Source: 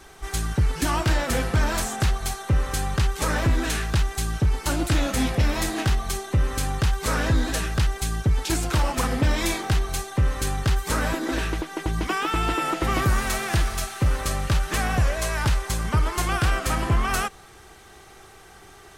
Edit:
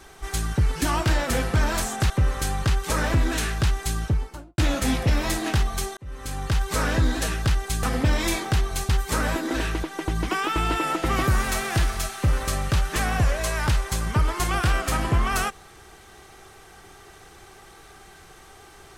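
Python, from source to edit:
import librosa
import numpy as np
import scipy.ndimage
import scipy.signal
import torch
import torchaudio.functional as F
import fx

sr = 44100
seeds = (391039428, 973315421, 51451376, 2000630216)

y = fx.studio_fade_out(x, sr, start_s=4.26, length_s=0.64)
y = fx.edit(y, sr, fx.cut(start_s=2.1, length_s=0.32),
    fx.fade_in_span(start_s=6.29, length_s=0.66),
    fx.cut(start_s=8.15, length_s=0.86),
    fx.cut(start_s=10.07, length_s=0.6), tone=tone)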